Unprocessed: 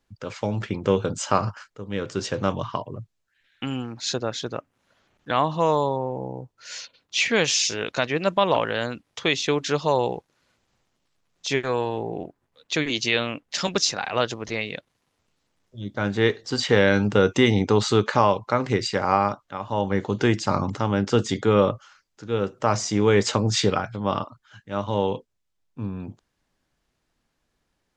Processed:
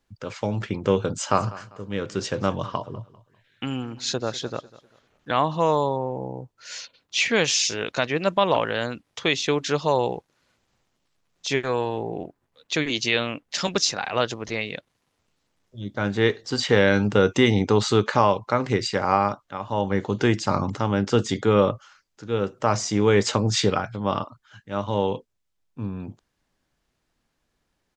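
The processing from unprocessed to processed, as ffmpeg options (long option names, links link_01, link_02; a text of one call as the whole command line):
ffmpeg -i in.wav -filter_complex "[0:a]asplit=3[link_01][link_02][link_03];[link_01]afade=type=out:start_time=1.3:duration=0.02[link_04];[link_02]aecho=1:1:198|396|594:0.112|0.0348|0.0108,afade=type=in:start_time=1.3:duration=0.02,afade=type=out:start_time=5.34:duration=0.02[link_05];[link_03]afade=type=in:start_time=5.34:duration=0.02[link_06];[link_04][link_05][link_06]amix=inputs=3:normalize=0" out.wav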